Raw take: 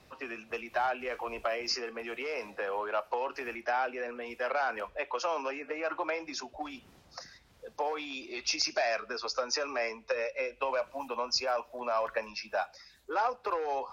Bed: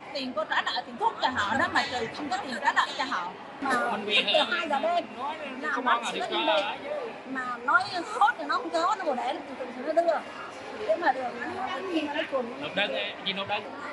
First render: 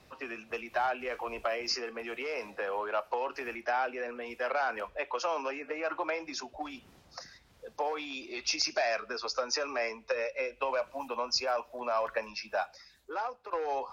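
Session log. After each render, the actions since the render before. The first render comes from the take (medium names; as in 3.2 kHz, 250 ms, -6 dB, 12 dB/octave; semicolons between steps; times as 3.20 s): 12.71–13.53 s: fade out, to -12 dB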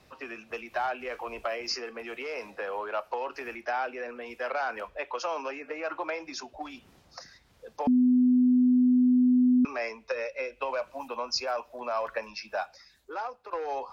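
7.87–9.65 s: bleep 250 Hz -18 dBFS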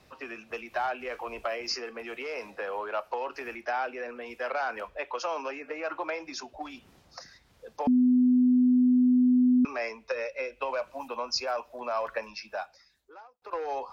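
12.22–13.42 s: fade out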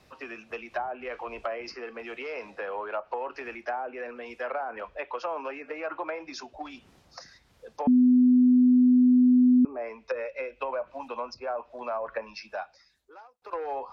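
low-pass that closes with the level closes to 580 Hz, closed at -24.5 dBFS; dynamic bell 300 Hz, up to +3 dB, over -32 dBFS, Q 0.76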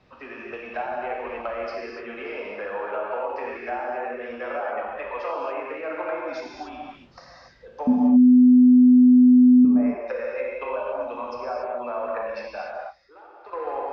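distance through air 180 m; gated-style reverb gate 310 ms flat, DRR -3.5 dB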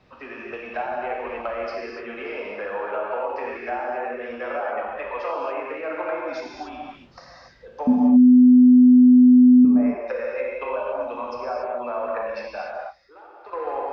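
trim +1.5 dB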